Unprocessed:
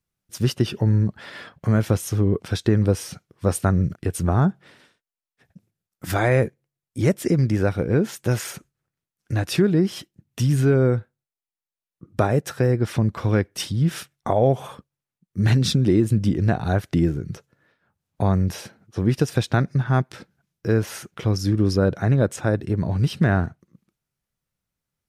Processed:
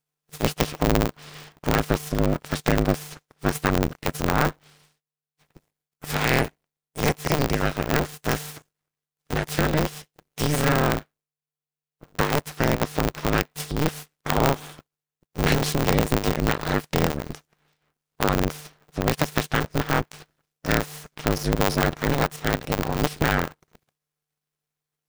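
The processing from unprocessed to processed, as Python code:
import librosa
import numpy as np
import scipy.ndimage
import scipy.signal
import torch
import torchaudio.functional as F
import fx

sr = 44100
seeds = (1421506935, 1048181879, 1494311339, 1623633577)

y = fx.spec_clip(x, sr, under_db=18)
y = np.maximum(y, 0.0)
y = y * np.sign(np.sin(2.0 * np.pi * 150.0 * np.arange(len(y)) / sr))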